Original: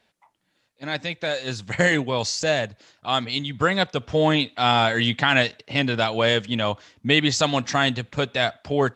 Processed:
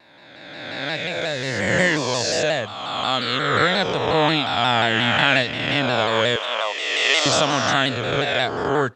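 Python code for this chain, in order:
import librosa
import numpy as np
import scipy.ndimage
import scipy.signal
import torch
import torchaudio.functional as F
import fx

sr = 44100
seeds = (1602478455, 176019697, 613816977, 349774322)

y = fx.spec_swells(x, sr, rise_s=1.8)
y = fx.highpass(y, sr, hz=480.0, slope=24, at=(6.36, 7.26))
y = fx.vibrato_shape(y, sr, shape='saw_down', rate_hz=5.6, depth_cents=100.0)
y = y * librosa.db_to_amplitude(-2.0)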